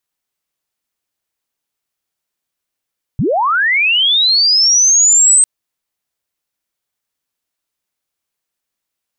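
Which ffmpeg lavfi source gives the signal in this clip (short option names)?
-f lavfi -i "aevalsrc='pow(10,(-11.5+6*t/2.25)/20)*sin(2*PI*(93*t+8207*t*t/(2*2.25)))':d=2.25:s=44100"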